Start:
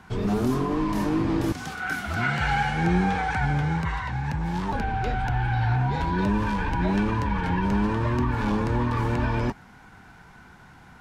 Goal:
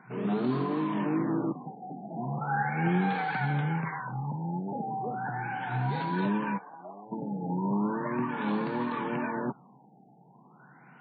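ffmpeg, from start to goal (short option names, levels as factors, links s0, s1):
-filter_complex "[0:a]asplit=3[s0][s1][s2];[s0]afade=t=out:st=6.57:d=0.02[s3];[s1]asplit=3[s4][s5][s6];[s4]bandpass=f=730:t=q:w=8,volume=1[s7];[s5]bandpass=f=1090:t=q:w=8,volume=0.501[s8];[s6]bandpass=f=2440:t=q:w=8,volume=0.355[s9];[s7][s8][s9]amix=inputs=3:normalize=0,afade=t=in:st=6.57:d=0.02,afade=t=out:st=7.11:d=0.02[s10];[s2]afade=t=in:st=7.11:d=0.02[s11];[s3][s10][s11]amix=inputs=3:normalize=0,afftfilt=real='re*between(b*sr/4096,120,7900)':imag='im*between(b*sr/4096,120,7900)':win_size=4096:overlap=0.75,afftfilt=real='re*lt(b*sr/1024,860*pow(4700/860,0.5+0.5*sin(2*PI*0.37*pts/sr)))':imag='im*lt(b*sr/1024,860*pow(4700/860,0.5+0.5*sin(2*PI*0.37*pts/sr)))':win_size=1024:overlap=0.75,volume=0.631"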